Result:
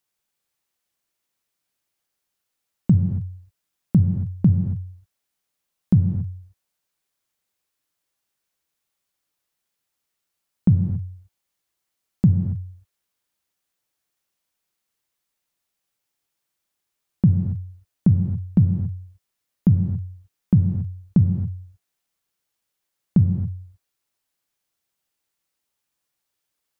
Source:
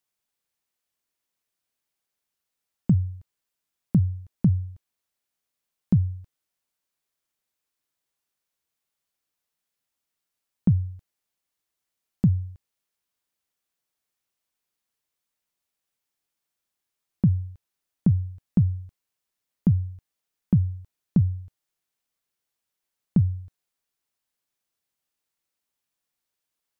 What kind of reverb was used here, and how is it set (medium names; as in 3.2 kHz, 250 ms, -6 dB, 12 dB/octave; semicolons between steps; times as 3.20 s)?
gated-style reverb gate 300 ms flat, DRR 6 dB; trim +3 dB